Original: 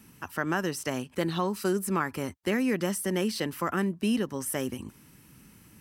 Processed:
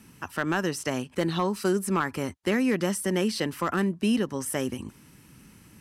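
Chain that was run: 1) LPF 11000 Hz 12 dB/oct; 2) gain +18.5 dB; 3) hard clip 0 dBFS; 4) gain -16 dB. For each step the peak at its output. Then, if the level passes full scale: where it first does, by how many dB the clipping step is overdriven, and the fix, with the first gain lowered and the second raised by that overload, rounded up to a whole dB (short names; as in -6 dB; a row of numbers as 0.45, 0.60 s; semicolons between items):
-13.5, +5.0, 0.0, -16.0 dBFS; step 2, 5.0 dB; step 2 +13.5 dB, step 4 -11 dB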